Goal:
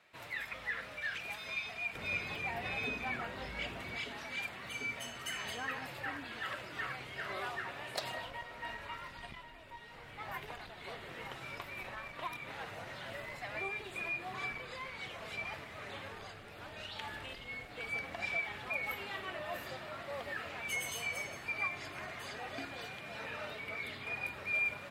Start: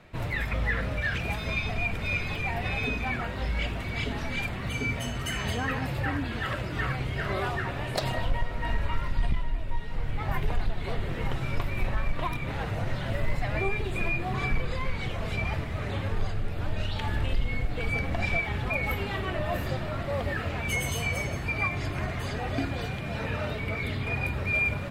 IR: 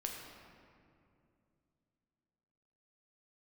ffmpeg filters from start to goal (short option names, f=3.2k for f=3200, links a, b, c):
-af "asetnsamples=n=441:p=0,asendcmd='1.95 highpass f 320;3.97 highpass f 840',highpass=f=1.4k:p=1,volume=-6dB"